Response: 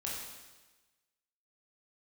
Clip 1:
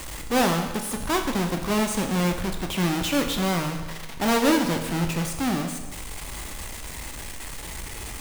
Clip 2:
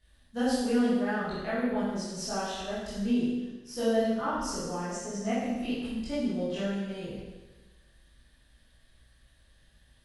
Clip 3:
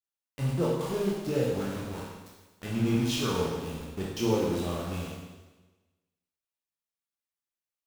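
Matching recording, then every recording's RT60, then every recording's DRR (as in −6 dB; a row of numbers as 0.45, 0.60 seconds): 3; 1.2, 1.2, 1.2 seconds; 4.0, −12.0, −5.0 decibels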